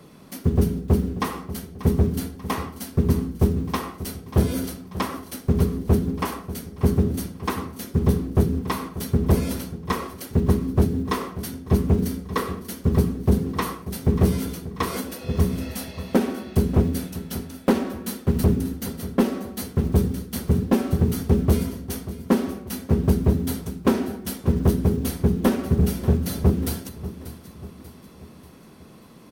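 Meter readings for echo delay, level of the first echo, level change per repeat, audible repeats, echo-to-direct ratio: 588 ms, -15.0 dB, -6.5 dB, 4, -14.0 dB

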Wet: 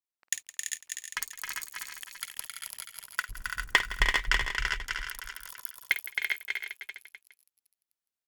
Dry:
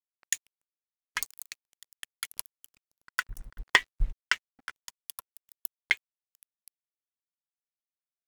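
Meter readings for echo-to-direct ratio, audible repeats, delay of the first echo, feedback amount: 2.0 dB, 19, 51 ms, no regular repeats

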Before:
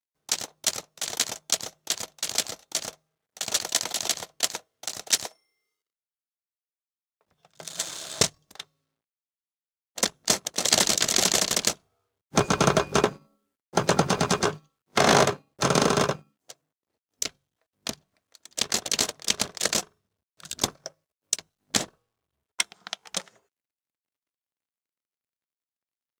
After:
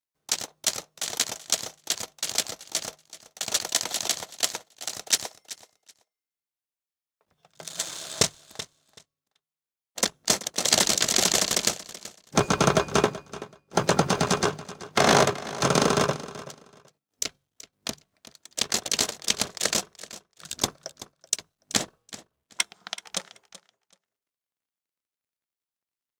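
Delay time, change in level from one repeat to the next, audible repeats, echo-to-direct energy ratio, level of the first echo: 380 ms, -14.5 dB, 2, -16.5 dB, -16.5 dB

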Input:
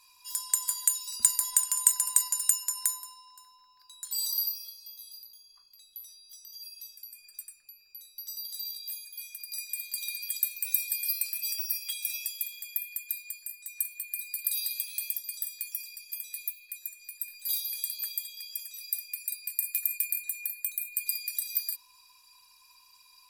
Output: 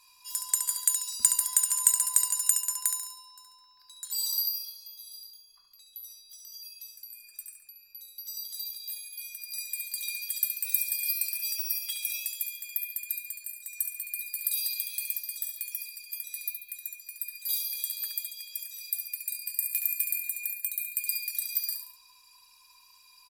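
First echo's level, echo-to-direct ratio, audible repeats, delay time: -7.0 dB, -6.0 dB, 3, 70 ms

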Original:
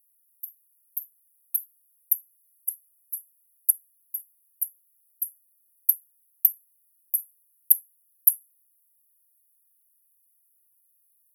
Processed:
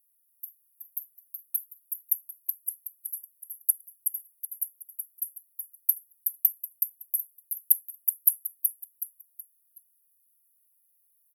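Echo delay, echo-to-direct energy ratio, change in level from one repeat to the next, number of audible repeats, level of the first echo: 373 ms, -4.5 dB, -9.0 dB, 4, -5.0 dB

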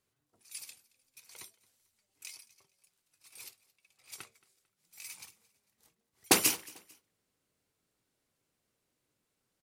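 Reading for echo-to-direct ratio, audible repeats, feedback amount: -22.5 dB, 2, 37%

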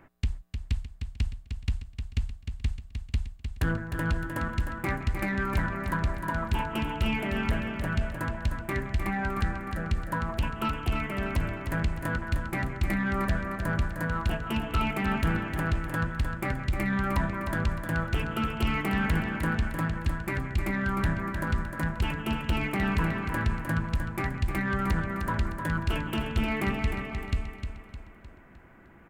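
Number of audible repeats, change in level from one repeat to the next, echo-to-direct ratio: 5, -7.0 dB, -6.0 dB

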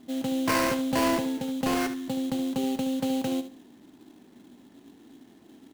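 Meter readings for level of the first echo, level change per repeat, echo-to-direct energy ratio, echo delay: -11.5 dB, -13.5 dB, -11.5 dB, 72 ms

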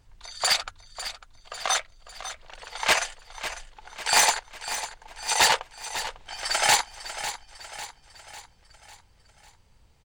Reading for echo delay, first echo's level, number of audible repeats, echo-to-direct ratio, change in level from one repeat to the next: 549 ms, -12.0 dB, 4, -11.0 dB, -6.0 dB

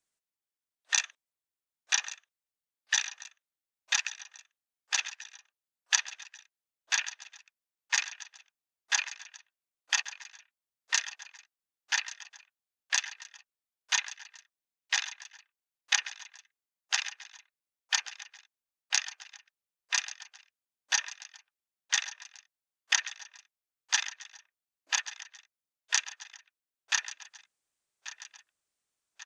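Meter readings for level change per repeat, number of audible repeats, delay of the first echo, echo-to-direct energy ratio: -5.5 dB, 3, 1137 ms, -13.5 dB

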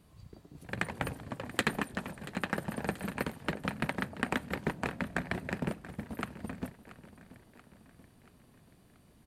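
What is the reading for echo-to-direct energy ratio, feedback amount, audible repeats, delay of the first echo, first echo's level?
-15.0 dB, 54%, 4, 682 ms, -16.5 dB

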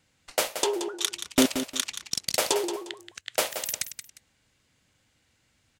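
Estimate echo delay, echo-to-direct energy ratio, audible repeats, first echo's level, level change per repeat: 177 ms, -9.0 dB, 2, -9.5 dB, -11.5 dB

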